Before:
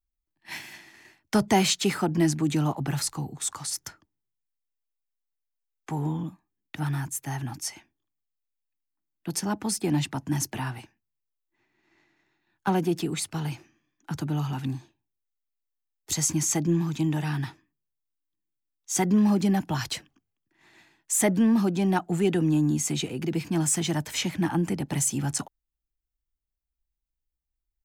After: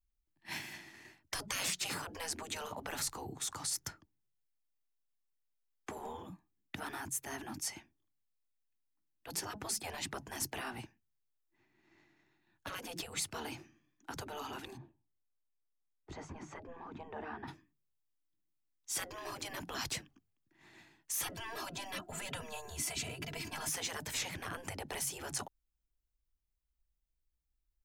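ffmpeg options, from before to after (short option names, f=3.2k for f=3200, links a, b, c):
-filter_complex "[0:a]asplit=3[a][b][c];[a]afade=t=out:st=14.76:d=0.02[d];[b]lowpass=1.2k,afade=t=in:st=14.76:d=0.02,afade=t=out:st=17.47:d=0.02[e];[c]afade=t=in:st=17.47:d=0.02[f];[d][e][f]amix=inputs=3:normalize=0,asettb=1/sr,asplit=3[g][h][i];[g]atrim=end=21.224[j];[h]atrim=start=21.22:end=23.69,asetpts=PTS-STARTPTS,afade=t=in:d=0.004:c=qsin,afade=t=out:st=2.466:d=0.004:c=qsin,aecho=1:1:3:0.85,atrim=end_sample=108927[k];[i]atrim=start=23.686[l];[j][k]acrossfade=d=0.004:c1=hsin:c2=qsin[m];[m][l]acrossfade=d=0.004:c1=qsin:c2=hsin,afftfilt=real='re*lt(hypot(re,im),0.0794)':imag='im*lt(hypot(re,im),0.0794)':win_size=1024:overlap=0.75,lowshelf=f=330:g=5.5,volume=-3.5dB"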